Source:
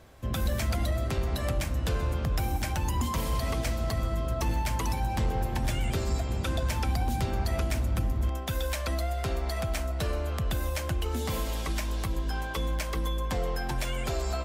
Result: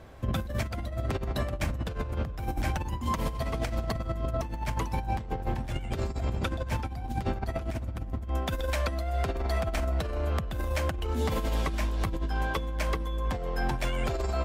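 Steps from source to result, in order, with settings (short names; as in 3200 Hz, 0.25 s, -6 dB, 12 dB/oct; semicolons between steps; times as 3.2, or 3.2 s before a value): high shelf 3800 Hz -10.5 dB; negative-ratio compressor -31 dBFS, ratio -0.5; gain +2 dB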